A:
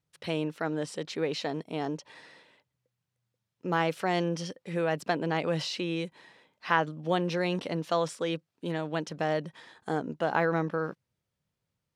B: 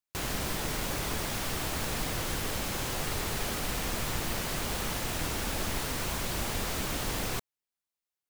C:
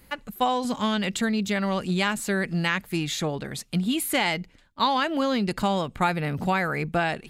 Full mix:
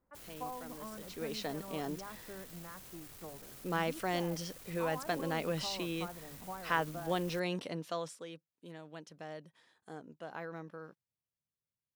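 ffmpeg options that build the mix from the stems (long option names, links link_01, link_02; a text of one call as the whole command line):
ffmpeg -i stem1.wav -i stem2.wav -i stem3.wav -filter_complex "[0:a]volume=-6.5dB,afade=type=in:start_time=0.98:duration=0.49:silence=0.237137,afade=type=out:start_time=7.58:duration=0.72:silence=0.298538[link_01];[1:a]asoftclip=type=tanh:threshold=-37dB,volume=-17.5dB[link_02];[2:a]lowpass=frequency=1200:width=0.5412,lowpass=frequency=1200:width=1.3066,lowshelf=frequency=360:gain=-9,bandreject=frequency=50:width_type=h:width=6,bandreject=frequency=100:width_type=h:width=6,bandreject=frequency=150:width_type=h:width=6,bandreject=frequency=200:width_type=h:width=6,volume=-16.5dB[link_03];[link_01][link_02][link_03]amix=inputs=3:normalize=0,highshelf=frequency=7800:gain=11.5,bandreject=frequency=860:width=21" out.wav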